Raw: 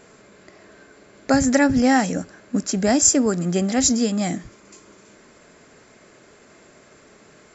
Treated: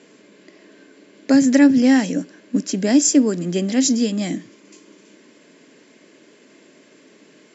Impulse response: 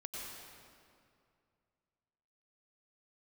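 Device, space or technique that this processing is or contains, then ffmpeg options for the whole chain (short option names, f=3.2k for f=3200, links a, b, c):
television speaker: -af "highpass=f=170:w=0.5412,highpass=f=170:w=1.3066,equalizer=f=290:t=q:w=4:g=8,equalizer=f=760:t=q:w=4:g=-9,equalizer=f=1.3k:t=q:w=4:g=-10,equalizer=f=3k:t=q:w=4:g=5,lowpass=f=7.1k:w=0.5412,lowpass=f=7.1k:w=1.3066"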